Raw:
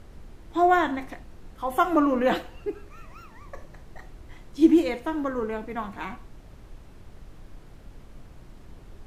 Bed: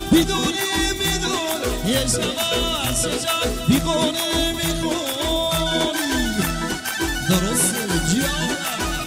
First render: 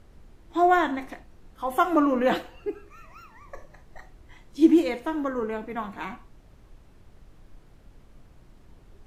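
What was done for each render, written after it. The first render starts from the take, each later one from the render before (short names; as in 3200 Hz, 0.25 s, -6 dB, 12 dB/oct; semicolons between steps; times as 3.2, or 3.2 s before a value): noise print and reduce 6 dB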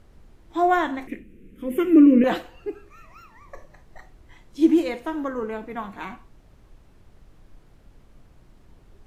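1.07–2.24 EQ curve 130 Hz 0 dB, 210 Hz +13 dB, 470 Hz +7 dB, 790 Hz -27 dB, 1300 Hz -12 dB, 2400 Hz +8 dB, 4400 Hz -17 dB, 7400 Hz -6 dB, 12000 Hz 0 dB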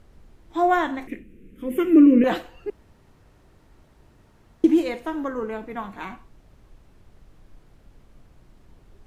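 2.7–4.64 room tone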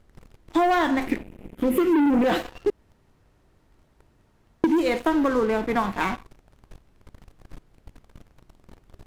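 sample leveller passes 3; compressor 12:1, threshold -18 dBFS, peak gain reduction 10.5 dB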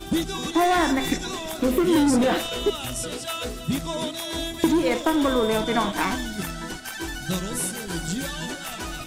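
add bed -9 dB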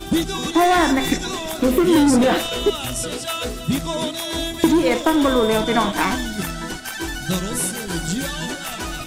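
gain +4.5 dB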